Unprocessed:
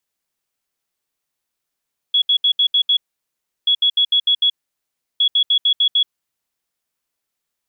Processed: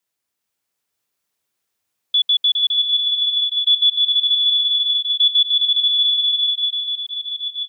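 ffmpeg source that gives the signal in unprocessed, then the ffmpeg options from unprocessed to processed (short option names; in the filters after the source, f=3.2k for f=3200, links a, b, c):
-f lavfi -i "aevalsrc='0.266*sin(2*PI*3360*t)*clip(min(mod(mod(t,1.53),0.15),0.08-mod(mod(t,1.53),0.15))/0.005,0,1)*lt(mod(t,1.53),0.9)':d=4.59:s=44100"
-filter_complex "[0:a]asplit=2[a][b];[b]aecho=0:1:410|676.5|849.7|962.3|1036:0.631|0.398|0.251|0.158|0.1[c];[a][c]amix=inputs=2:normalize=0,afreqshift=74,asplit=2[d][e];[e]aecho=0:1:926:0.596[f];[d][f]amix=inputs=2:normalize=0"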